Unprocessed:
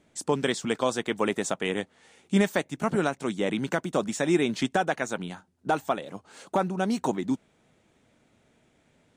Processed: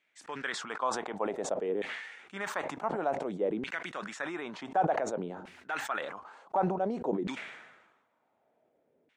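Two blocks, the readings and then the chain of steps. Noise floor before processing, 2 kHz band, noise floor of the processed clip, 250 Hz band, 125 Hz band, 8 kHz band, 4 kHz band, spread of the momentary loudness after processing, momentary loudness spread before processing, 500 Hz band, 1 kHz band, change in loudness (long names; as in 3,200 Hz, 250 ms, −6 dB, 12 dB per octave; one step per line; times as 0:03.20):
−66 dBFS, −5.0 dB, −75 dBFS, −10.0 dB, −9.5 dB, −9.0 dB, −9.0 dB, 11 LU, 8 LU, −5.0 dB, −2.0 dB, −6.0 dB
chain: auto-filter band-pass saw down 0.55 Hz 400–2,400 Hz
level that may fall only so fast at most 51 dB per second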